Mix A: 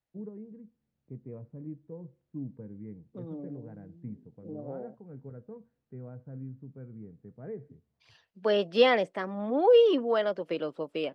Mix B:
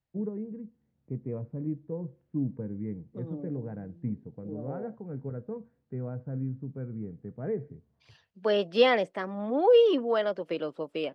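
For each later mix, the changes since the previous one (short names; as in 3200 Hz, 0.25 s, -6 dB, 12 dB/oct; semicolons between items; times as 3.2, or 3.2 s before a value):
first voice +8.0 dB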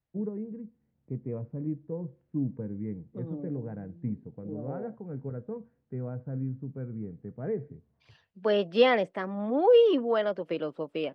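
second voice: add tone controls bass +3 dB, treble -6 dB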